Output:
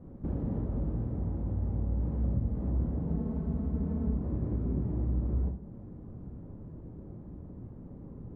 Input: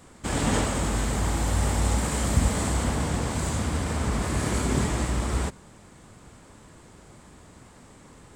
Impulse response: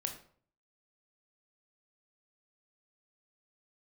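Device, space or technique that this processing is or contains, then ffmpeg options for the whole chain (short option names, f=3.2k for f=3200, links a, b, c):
television next door: -filter_complex "[0:a]asettb=1/sr,asplit=3[a][b][c];[a]atrim=end=3.074[d];[b]atrim=start=3.07:end=4.15,asetpts=PTS-STARTPTS,afade=t=in:d=0.004:c=qsin,afade=t=out:st=1.076:d=0.004:c=qsin,aecho=1:1:4.6:0.92,atrim=end_sample=47628[e];[c]atrim=start=4.146[f];[d][e]acrossfade=d=0.004:c1=hsin:c2=qsin[g];[g][f]acrossfade=d=0.004:c1=qsin:c2=hsin,acompressor=threshold=-36dB:ratio=4,lowpass=350[h];[1:a]atrim=start_sample=2205[i];[h][i]afir=irnorm=-1:irlink=0,volume=6dB"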